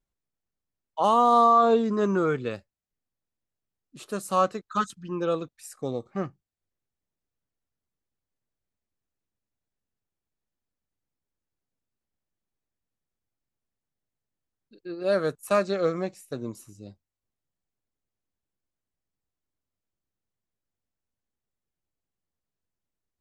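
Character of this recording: noise floor -88 dBFS; spectral tilt -5.0 dB/oct

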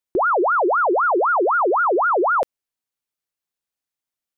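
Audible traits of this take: noise floor -88 dBFS; spectral tilt -2.5 dB/oct

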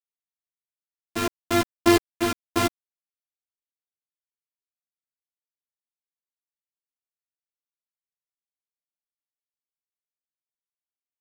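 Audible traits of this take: a buzz of ramps at a fixed pitch in blocks of 128 samples; tremolo saw up 0.97 Hz, depth 70%; a quantiser's noise floor 6-bit, dither none; a shimmering, thickened sound

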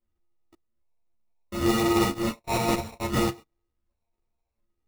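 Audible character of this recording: a buzz of ramps at a fixed pitch in blocks of 128 samples; phasing stages 6, 0.65 Hz, lowest notch 250–1300 Hz; aliases and images of a low sample rate 1600 Hz, jitter 0%; a shimmering, thickened sound

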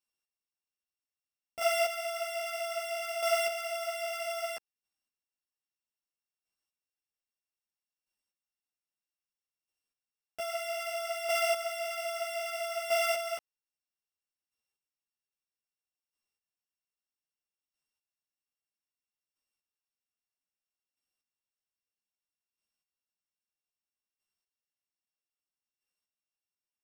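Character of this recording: a buzz of ramps at a fixed pitch in blocks of 16 samples; chopped level 0.62 Hz, depth 60%, duty 15%; a shimmering, thickened sound

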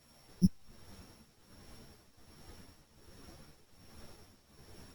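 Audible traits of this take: a buzz of ramps at a fixed pitch in blocks of 8 samples; tremolo triangle 1.3 Hz, depth 85%; a quantiser's noise floor 12-bit, dither none; a shimmering, thickened sound

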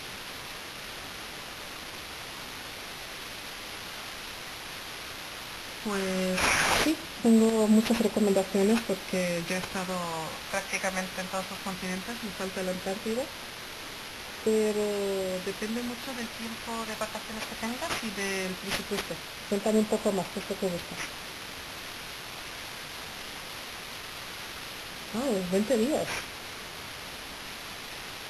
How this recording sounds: a quantiser's noise floor 8-bit, dither triangular; phasing stages 2, 0.16 Hz, lowest notch 360–1500 Hz; aliases and images of a low sample rate 8000 Hz, jitter 0%; Vorbis

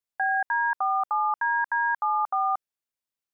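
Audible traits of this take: noise floor -91 dBFS; spectral tilt +10.0 dB/oct

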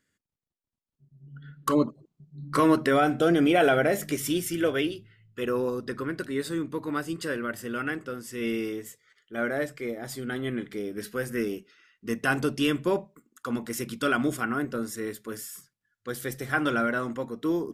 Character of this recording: noise floor -87 dBFS; spectral tilt -5.0 dB/oct

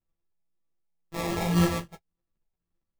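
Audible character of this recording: a buzz of ramps at a fixed pitch in blocks of 256 samples; phasing stages 8, 1.9 Hz, lowest notch 350–2200 Hz; aliases and images of a low sample rate 1500 Hz, jitter 0%; a shimmering, thickened sound

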